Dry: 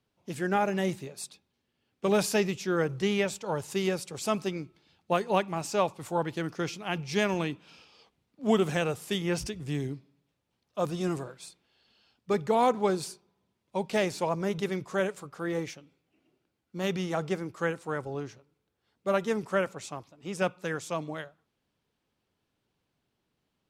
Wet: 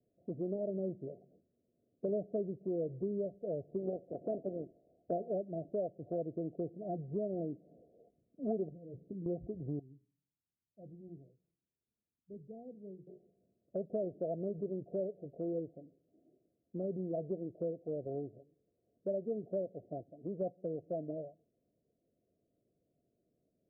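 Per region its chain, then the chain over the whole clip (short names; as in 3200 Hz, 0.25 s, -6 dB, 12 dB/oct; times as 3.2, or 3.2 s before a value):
3.77–5.27 spectral limiter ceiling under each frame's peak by 14 dB + synth low-pass 980 Hz, resonance Q 2.2
8.68–9.26 compressor 16:1, threshold -34 dBFS + Gaussian blur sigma 22 samples + doubler 16 ms -6.5 dB
9.79–13.07 passive tone stack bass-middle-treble 6-0-2 + notches 60/120/180/240/300/360/420/480/540 Hz
whole clip: Chebyshev low-pass 710 Hz, order 10; low shelf 140 Hz -11.5 dB; compressor 2.5:1, threshold -43 dBFS; gain +4.5 dB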